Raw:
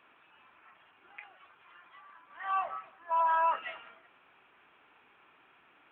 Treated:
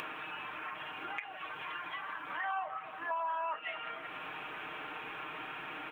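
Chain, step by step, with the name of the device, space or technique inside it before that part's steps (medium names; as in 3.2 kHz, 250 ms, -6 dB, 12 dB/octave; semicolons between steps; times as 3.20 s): 1.23–1.98 s: band-stop 1.3 kHz, Q 7.4; comb 6.5 ms, depth 55%; upward and downward compression (upward compressor, threshold -39 dBFS; compression 6:1, threshold -42 dBFS, peak gain reduction 15 dB); trim +7.5 dB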